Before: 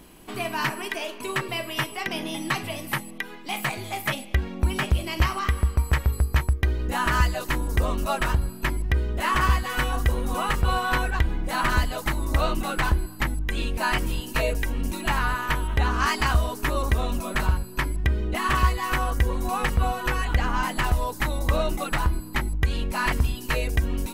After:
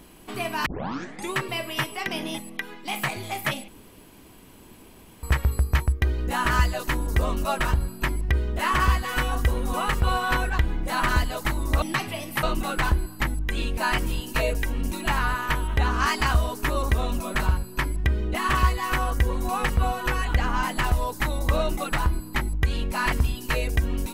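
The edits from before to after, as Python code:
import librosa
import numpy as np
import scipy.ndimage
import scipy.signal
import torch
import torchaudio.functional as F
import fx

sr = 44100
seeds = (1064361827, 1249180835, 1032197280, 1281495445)

y = fx.edit(x, sr, fx.tape_start(start_s=0.66, length_s=0.67),
    fx.move(start_s=2.38, length_s=0.61, to_s=12.43),
    fx.room_tone_fill(start_s=4.29, length_s=1.55), tone=tone)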